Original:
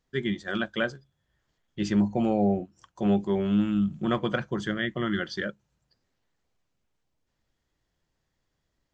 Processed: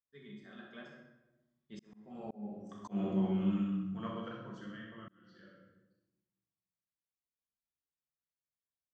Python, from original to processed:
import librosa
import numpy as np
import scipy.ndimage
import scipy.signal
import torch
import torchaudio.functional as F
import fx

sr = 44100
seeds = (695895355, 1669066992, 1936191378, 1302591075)

y = fx.doppler_pass(x, sr, speed_mps=15, closest_m=1.5, pass_at_s=2.87)
y = fx.highpass(y, sr, hz=110.0, slope=6)
y = fx.peak_eq(y, sr, hz=1100.0, db=7.5, octaves=0.34)
y = fx.room_flutter(y, sr, wall_m=10.8, rt60_s=0.51)
y = fx.room_shoebox(y, sr, seeds[0], volume_m3=370.0, walls='mixed', distance_m=1.6)
y = fx.auto_swell(y, sr, attack_ms=670.0)